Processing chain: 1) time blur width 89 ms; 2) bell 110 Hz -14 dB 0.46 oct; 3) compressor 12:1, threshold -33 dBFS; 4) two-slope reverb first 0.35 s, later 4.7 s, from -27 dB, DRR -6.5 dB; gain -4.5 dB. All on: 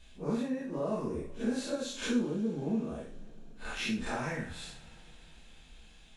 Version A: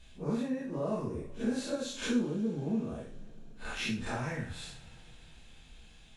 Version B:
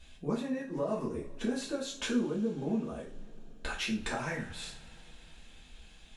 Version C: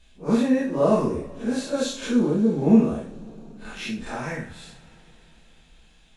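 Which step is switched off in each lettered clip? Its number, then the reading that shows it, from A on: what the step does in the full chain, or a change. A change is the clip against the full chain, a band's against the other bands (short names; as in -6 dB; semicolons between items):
2, 125 Hz band +2.5 dB; 1, momentary loudness spread change +4 LU; 3, mean gain reduction 5.5 dB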